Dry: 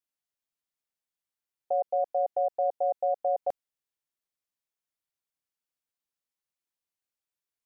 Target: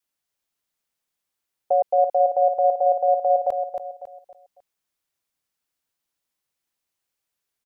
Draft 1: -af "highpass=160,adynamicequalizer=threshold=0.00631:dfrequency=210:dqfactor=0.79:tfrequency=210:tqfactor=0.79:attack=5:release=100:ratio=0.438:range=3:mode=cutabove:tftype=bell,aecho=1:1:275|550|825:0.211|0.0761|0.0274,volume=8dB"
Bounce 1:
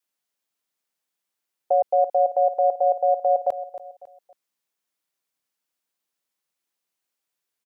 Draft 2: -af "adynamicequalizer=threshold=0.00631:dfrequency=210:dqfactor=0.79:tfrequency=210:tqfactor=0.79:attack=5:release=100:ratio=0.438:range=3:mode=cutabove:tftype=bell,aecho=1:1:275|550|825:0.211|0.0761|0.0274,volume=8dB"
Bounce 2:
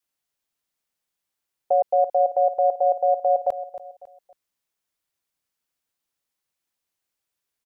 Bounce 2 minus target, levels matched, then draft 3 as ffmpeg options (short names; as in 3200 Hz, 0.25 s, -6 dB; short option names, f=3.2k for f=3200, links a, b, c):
echo-to-direct -6.5 dB
-af "adynamicequalizer=threshold=0.00631:dfrequency=210:dqfactor=0.79:tfrequency=210:tqfactor=0.79:attack=5:release=100:ratio=0.438:range=3:mode=cutabove:tftype=bell,aecho=1:1:275|550|825|1100:0.447|0.161|0.0579|0.0208,volume=8dB"